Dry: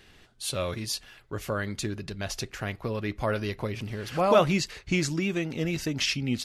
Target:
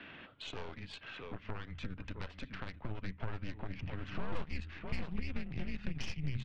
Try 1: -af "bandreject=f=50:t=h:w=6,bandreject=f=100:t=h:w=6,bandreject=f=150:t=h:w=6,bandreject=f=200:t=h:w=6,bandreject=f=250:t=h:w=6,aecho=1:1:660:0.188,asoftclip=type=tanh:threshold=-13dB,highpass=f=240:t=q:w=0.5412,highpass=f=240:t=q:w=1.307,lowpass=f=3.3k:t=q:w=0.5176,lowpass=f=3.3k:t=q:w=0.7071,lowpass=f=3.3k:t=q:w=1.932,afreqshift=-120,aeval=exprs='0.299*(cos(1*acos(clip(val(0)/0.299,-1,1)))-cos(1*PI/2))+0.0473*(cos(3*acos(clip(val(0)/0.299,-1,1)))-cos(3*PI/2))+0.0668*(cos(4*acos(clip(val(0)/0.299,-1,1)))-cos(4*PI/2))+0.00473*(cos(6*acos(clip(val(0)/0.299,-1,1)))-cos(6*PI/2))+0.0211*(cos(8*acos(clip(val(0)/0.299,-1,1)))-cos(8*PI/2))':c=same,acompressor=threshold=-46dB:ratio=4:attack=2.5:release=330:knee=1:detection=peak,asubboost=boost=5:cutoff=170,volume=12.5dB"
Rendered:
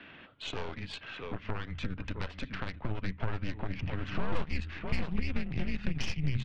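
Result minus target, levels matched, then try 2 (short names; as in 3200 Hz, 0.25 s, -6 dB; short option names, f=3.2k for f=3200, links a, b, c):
compressor: peak gain reduction -6.5 dB
-af "bandreject=f=50:t=h:w=6,bandreject=f=100:t=h:w=6,bandreject=f=150:t=h:w=6,bandreject=f=200:t=h:w=6,bandreject=f=250:t=h:w=6,aecho=1:1:660:0.188,asoftclip=type=tanh:threshold=-13dB,highpass=f=240:t=q:w=0.5412,highpass=f=240:t=q:w=1.307,lowpass=f=3.3k:t=q:w=0.5176,lowpass=f=3.3k:t=q:w=0.7071,lowpass=f=3.3k:t=q:w=1.932,afreqshift=-120,aeval=exprs='0.299*(cos(1*acos(clip(val(0)/0.299,-1,1)))-cos(1*PI/2))+0.0473*(cos(3*acos(clip(val(0)/0.299,-1,1)))-cos(3*PI/2))+0.0668*(cos(4*acos(clip(val(0)/0.299,-1,1)))-cos(4*PI/2))+0.00473*(cos(6*acos(clip(val(0)/0.299,-1,1)))-cos(6*PI/2))+0.0211*(cos(8*acos(clip(val(0)/0.299,-1,1)))-cos(8*PI/2))':c=same,acompressor=threshold=-54.5dB:ratio=4:attack=2.5:release=330:knee=1:detection=peak,asubboost=boost=5:cutoff=170,volume=12.5dB"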